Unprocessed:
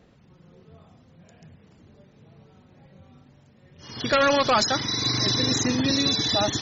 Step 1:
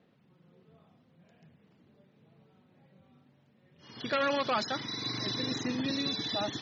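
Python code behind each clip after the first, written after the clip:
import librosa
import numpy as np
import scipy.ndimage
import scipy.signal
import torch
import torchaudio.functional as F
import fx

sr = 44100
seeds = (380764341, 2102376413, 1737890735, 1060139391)

y = scipy.signal.sosfilt(scipy.signal.cheby1(2, 1.0, [160.0, 3600.0], 'bandpass', fs=sr, output='sos'), x)
y = y * 10.0 ** (-8.5 / 20.0)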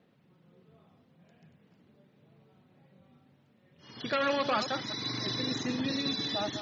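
y = fx.reverse_delay(x, sr, ms=176, wet_db=-9)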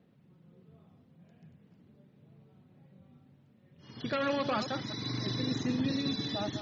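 y = fx.low_shelf(x, sr, hz=300.0, db=11.0)
y = y * 10.0 ** (-4.5 / 20.0)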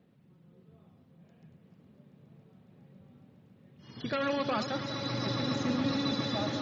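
y = fx.echo_swell(x, sr, ms=138, loudest=8, wet_db=-13.0)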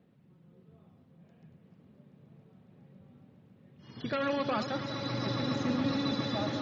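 y = fx.high_shelf(x, sr, hz=5400.0, db=-7.0)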